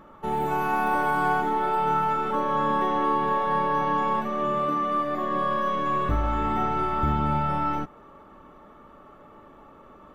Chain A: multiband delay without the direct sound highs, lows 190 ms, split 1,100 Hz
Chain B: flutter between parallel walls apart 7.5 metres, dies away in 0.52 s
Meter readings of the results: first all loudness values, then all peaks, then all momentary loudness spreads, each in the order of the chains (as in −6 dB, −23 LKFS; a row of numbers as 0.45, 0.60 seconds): −27.5, −25.5 LKFS; −12.5, −10.0 dBFS; 4, 4 LU